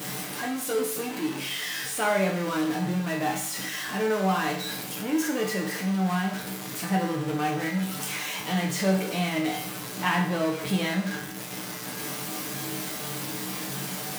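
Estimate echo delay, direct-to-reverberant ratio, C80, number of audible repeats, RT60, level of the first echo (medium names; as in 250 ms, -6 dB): no echo, -2.0 dB, 9.5 dB, no echo, 0.55 s, no echo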